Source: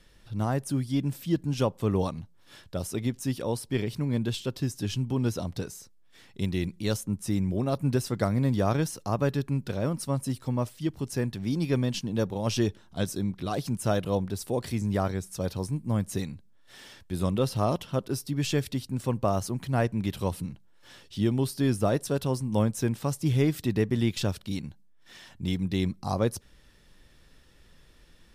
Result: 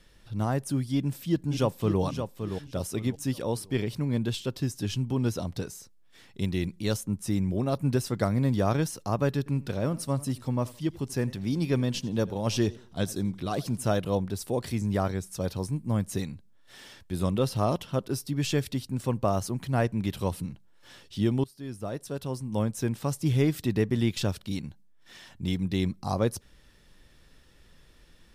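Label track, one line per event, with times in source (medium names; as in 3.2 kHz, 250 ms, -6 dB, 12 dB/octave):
0.940000	2.010000	echo throw 570 ms, feedback 30%, level -7.5 dB
9.370000	13.880000	modulated delay 86 ms, feedback 33%, depth 107 cents, level -20.5 dB
21.440000	23.170000	fade in, from -20 dB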